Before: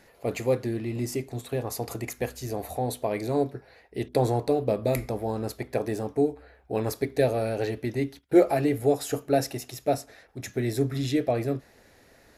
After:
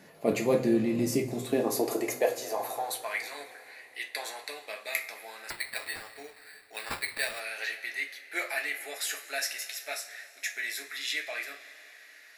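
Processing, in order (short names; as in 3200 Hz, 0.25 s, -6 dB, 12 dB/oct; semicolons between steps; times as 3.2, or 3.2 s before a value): high-pass sweep 150 Hz -> 1900 Hz, 1.21–3.22; two-slope reverb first 0.23 s, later 3.4 s, from -21 dB, DRR 1.5 dB; 5.5–7.4 sample-rate reducer 6300 Hz, jitter 0%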